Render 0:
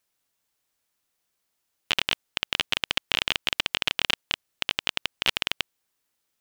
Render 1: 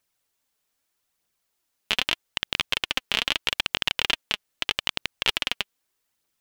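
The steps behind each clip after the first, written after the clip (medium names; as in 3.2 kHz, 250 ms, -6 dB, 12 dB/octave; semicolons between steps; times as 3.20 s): phaser 0.8 Hz, delay 5 ms, feedback 37%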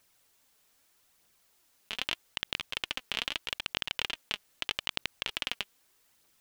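compressor with a negative ratio -34 dBFS, ratio -1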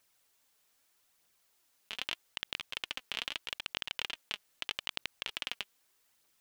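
bass shelf 370 Hz -4.5 dB; trim -4 dB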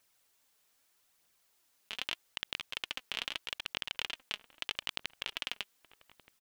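echo from a far wall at 210 m, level -17 dB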